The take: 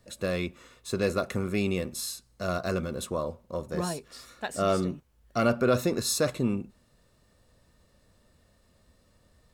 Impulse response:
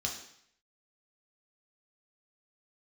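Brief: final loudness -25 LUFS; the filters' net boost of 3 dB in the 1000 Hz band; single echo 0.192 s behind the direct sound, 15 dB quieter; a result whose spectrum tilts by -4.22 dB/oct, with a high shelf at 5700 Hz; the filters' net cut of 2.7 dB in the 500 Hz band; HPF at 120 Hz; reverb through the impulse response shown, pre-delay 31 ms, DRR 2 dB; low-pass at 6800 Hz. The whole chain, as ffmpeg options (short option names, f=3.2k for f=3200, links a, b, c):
-filter_complex "[0:a]highpass=120,lowpass=6.8k,equalizer=f=500:t=o:g=-5,equalizer=f=1k:t=o:g=5.5,highshelf=f=5.7k:g=8.5,aecho=1:1:192:0.178,asplit=2[a][b];[1:a]atrim=start_sample=2205,adelay=31[c];[b][c]afir=irnorm=-1:irlink=0,volume=-5dB[d];[a][d]amix=inputs=2:normalize=0,volume=2.5dB"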